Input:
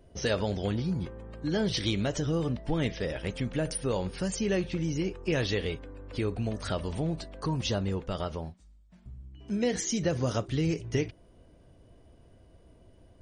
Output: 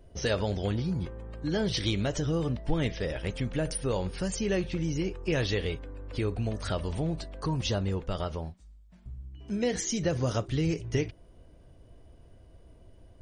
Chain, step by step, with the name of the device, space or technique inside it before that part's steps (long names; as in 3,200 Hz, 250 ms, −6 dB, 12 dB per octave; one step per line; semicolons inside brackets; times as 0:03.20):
low shelf boost with a cut just above (low-shelf EQ 66 Hz +7 dB; parametric band 220 Hz −2 dB)